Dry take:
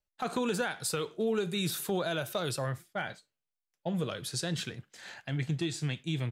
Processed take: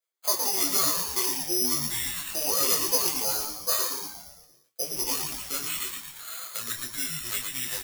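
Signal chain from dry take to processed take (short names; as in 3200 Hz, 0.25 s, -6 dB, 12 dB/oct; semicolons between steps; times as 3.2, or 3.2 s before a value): HPF 650 Hz 12 dB/oct; comb 6.4 ms, depth 57%; wide varispeed 0.805×; frequency-shifting echo 0.115 s, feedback 54%, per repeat -110 Hz, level -4.5 dB; careless resampling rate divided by 8×, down filtered, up zero stuff; detuned doubles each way 13 cents; gain +4 dB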